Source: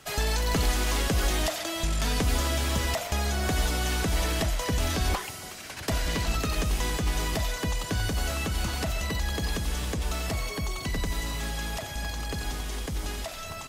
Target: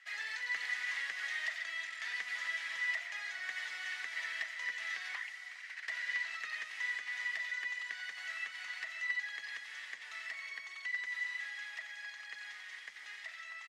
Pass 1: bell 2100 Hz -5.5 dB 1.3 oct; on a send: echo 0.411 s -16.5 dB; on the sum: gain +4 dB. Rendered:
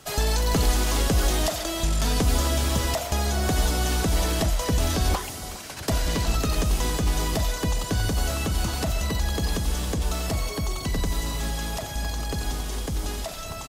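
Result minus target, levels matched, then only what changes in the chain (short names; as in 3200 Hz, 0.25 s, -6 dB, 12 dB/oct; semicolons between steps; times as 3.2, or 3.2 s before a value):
2000 Hz band -12.5 dB
add first: ladder band-pass 2000 Hz, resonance 85%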